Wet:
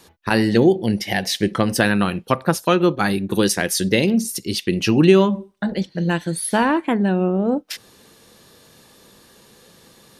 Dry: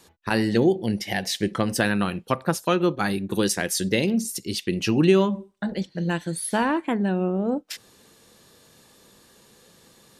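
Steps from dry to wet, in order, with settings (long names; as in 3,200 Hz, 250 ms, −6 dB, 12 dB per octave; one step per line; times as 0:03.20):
parametric band 7,500 Hz −4.5 dB 0.31 octaves
level +5 dB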